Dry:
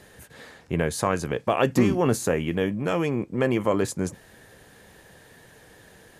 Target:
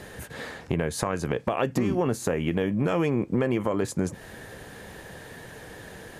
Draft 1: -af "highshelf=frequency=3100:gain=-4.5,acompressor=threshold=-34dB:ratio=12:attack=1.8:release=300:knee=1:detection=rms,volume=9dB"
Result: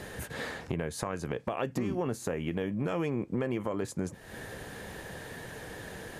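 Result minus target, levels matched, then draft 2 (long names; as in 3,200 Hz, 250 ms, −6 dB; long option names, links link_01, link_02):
downward compressor: peak gain reduction +7 dB
-af "highshelf=frequency=3100:gain=-4.5,acompressor=threshold=-26.5dB:ratio=12:attack=1.8:release=300:knee=1:detection=rms,volume=9dB"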